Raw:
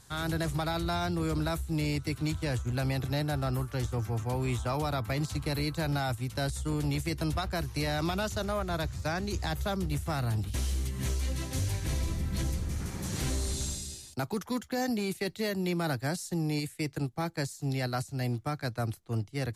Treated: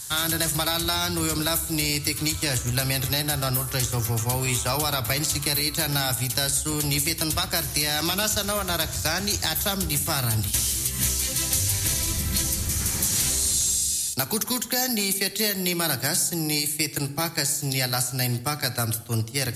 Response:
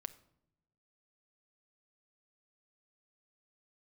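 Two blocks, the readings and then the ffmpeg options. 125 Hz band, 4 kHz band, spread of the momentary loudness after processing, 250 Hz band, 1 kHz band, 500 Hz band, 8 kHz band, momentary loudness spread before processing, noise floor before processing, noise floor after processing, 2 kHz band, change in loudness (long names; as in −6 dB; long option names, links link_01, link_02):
+3.0 dB, +14.5 dB, 3 LU, +2.5 dB, +5.0 dB, +3.0 dB, +19.0 dB, 3 LU, −51 dBFS, −35 dBFS, +8.5 dB, +9.0 dB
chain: -filter_complex "[0:a]crystalizer=i=7.5:c=0,acompressor=threshold=-25dB:ratio=6[link_01];[1:a]atrim=start_sample=2205,asetrate=29106,aresample=44100[link_02];[link_01][link_02]afir=irnorm=-1:irlink=0,volume=6dB"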